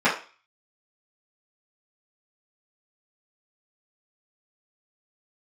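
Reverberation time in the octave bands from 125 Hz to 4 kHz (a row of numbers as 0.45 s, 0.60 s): 0.25 s, 0.30 s, 0.35 s, 0.40 s, 0.40 s, 0.40 s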